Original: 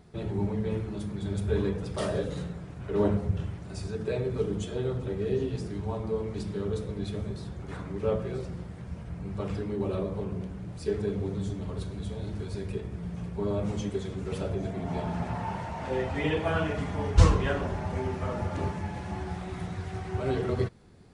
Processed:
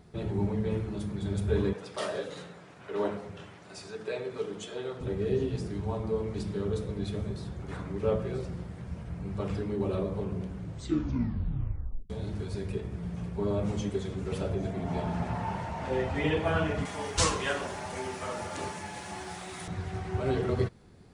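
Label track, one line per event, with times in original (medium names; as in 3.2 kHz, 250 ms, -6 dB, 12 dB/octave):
1.730000	5.010000	frequency weighting A
10.580000	10.580000	tape stop 1.52 s
16.850000	19.680000	RIAA curve recording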